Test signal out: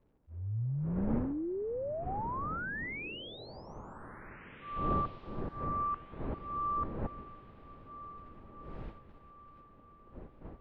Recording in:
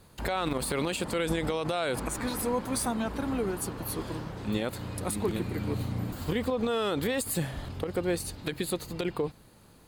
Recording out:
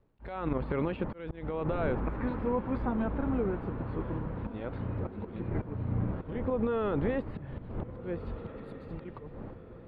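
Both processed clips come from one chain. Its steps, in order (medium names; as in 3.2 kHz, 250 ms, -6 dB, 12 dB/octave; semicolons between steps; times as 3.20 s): wind noise 470 Hz -43 dBFS; gate -43 dBFS, range -21 dB; bass shelf 72 Hz +8.5 dB; band-stop 710 Hz, Q 18; slow attack 324 ms; low-pass that closes with the level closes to 2.2 kHz, closed at -31 dBFS; crackle 93 per s -61 dBFS; distance through air 470 m; echo that smears into a reverb 1646 ms, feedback 41%, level -14 dB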